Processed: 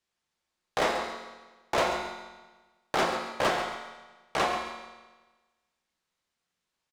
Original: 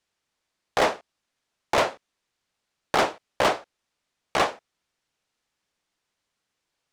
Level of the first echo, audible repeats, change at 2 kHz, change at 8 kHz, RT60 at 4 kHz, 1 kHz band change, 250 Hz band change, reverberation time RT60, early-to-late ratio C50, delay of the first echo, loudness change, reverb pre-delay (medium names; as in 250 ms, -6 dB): -9.5 dB, 1, -3.0 dB, -3.5 dB, 1.2 s, -3.0 dB, -2.5 dB, 1.3 s, 3.0 dB, 135 ms, -4.5 dB, 6 ms